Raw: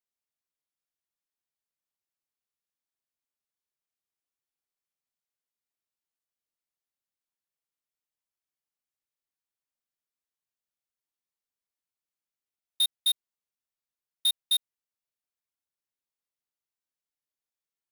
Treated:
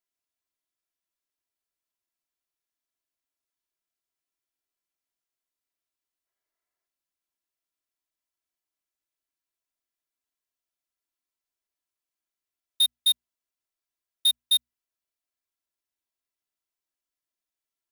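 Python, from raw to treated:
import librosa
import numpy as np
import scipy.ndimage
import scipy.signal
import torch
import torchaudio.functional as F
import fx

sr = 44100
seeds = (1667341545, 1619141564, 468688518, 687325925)

y = fx.hum_notches(x, sr, base_hz=60, count=4)
y = fx.spec_box(y, sr, start_s=6.26, length_s=0.61, low_hz=350.0, high_hz=2300.0, gain_db=7)
y = y + 0.61 * np.pad(y, (int(3.0 * sr / 1000.0), 0))[:len(y)]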